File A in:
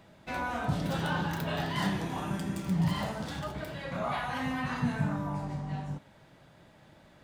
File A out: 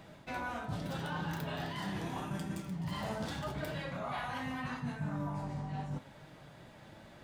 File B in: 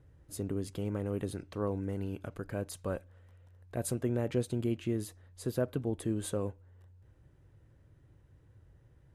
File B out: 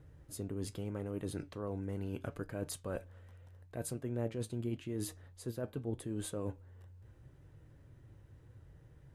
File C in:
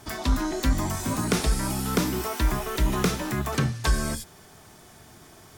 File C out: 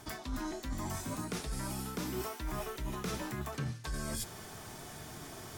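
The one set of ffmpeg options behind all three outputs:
-af "areverse,acompressor=threshold=-38dB:ratio=10,areverse,flanger=delay=6.4:depth=2.8:regen=75:speed=0.79:shape=sinusoidal,volume=7.5dB"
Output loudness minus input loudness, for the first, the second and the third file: -6.0, -5.0, -13.0 LU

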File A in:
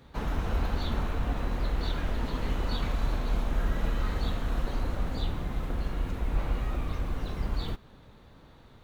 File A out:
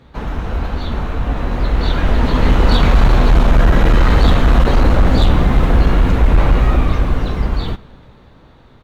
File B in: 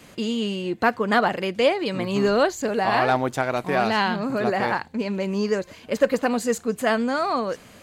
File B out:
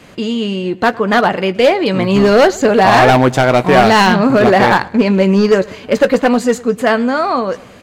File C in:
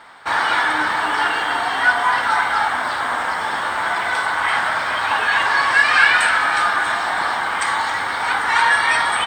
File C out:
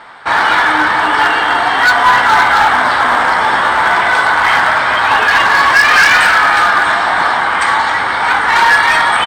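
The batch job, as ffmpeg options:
-filter_complex "[0:a]highshelf=f=6.7k:g=-11.5,dynaudnorm=f=210:g=21:m=15dB,asoftclip=type=hard:threshold=-12.5dB,asplit=2[a][b];[b]adelay=16,volume=-13dB[c];[a][c]amix=inputs=2:normalize=0,asplit=2[d][e];[e]adelay=108,lowpass=f=3.9k:p=1,volume=-22dB,asplit=2[f][g];[g]adelay=108,lowpass=f=3.9k:p=1,volume=0.48,asplit=2[h][i];[i]adelay=108,lowpass=f=3.9k:p=1,volume=0.48[j];[d][f][h][j]amix=inputs=4:normalize=0,volume=8dB"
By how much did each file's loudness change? +17.5, +11.5, +8.0 LU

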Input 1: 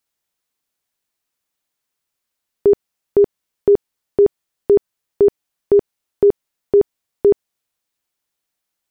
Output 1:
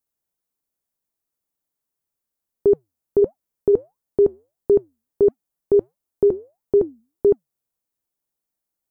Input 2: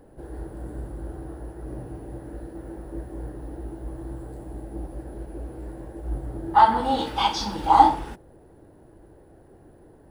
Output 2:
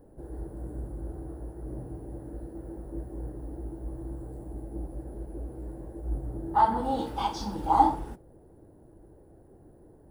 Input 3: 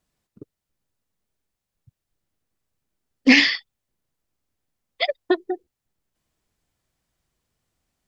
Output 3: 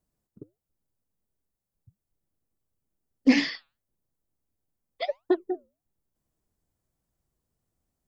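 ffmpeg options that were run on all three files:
-af "equalizer=f=2.8k:t=o:w=2.7:g=-12,flanger=delay=1.7:depth=5.2:regen=-88:speed=1.5:shape=triangular,volume=2.5dB"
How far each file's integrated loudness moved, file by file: -3.5, -8.5, -7.5 LU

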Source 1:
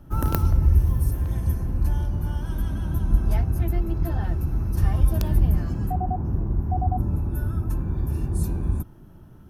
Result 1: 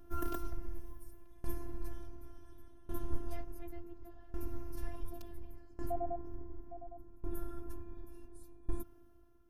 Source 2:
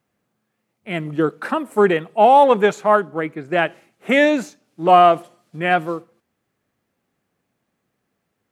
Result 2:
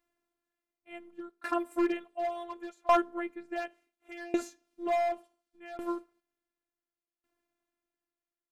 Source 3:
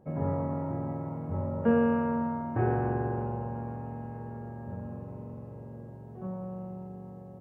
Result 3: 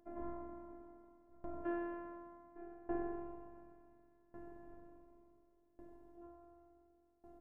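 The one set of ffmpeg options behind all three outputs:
-af "afftfilt=real='hypot(re,im)*cos(PI*b)':imag='0':win_size=512:overlap=0.75,volume=12dB,asoftclip=hard,volume=-12dB,aeval=exprs='val(0)*pow(10,-22*if(lt(mod(0.69*n/s,1),2*abs(0.69)/1000),1-mod(0.69*n/s,1)/(2*abs(0.69)/1000),(mod(0.69*n/s,1)-2*abs(0.69)/1000)/(1-2*abs(0.69)/1000))/20)':c=same,volume=-3.5dB"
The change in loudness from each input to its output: -21.5, -16.0, -15.5 LU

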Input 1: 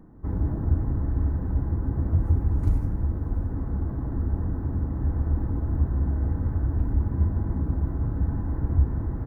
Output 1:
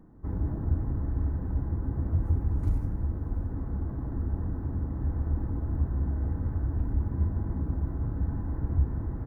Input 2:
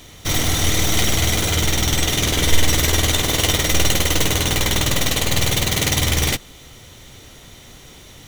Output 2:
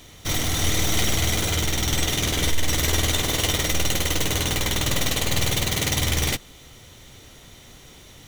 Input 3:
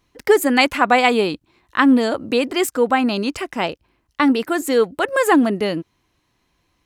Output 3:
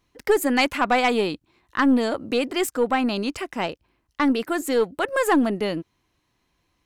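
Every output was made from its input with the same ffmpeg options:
-af "aeval=exprs='(tanh(2*val(0)+0.25)-tanh(0.25))/2':c=same,volume=-3.5dB"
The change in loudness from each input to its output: -4.0, -4.5, -5.0 LU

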